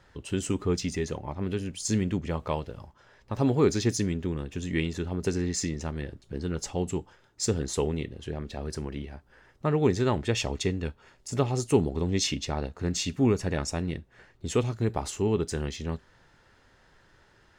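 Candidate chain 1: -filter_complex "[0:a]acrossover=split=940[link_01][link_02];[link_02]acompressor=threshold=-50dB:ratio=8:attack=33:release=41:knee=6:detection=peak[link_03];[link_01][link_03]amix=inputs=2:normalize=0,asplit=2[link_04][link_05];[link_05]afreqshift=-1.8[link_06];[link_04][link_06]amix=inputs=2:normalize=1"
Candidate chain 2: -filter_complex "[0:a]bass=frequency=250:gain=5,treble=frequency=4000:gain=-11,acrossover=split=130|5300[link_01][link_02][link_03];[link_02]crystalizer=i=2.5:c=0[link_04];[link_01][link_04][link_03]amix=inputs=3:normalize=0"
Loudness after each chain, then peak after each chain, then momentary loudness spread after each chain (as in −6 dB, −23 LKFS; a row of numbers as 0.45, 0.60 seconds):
−33.5, −27.0 LKFS; −11.0, −6.0 dBFS; 12, 11 LU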